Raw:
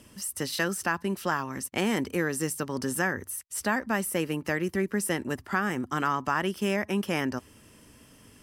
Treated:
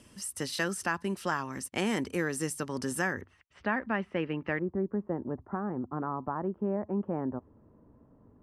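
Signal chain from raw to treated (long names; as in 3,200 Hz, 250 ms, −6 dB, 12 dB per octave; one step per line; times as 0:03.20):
low-pass filter 11,000 Hz 24 dB per octave, from 0:03.21 2,900 Hz, from 0:04.59 1,000 Hz
level −3 dB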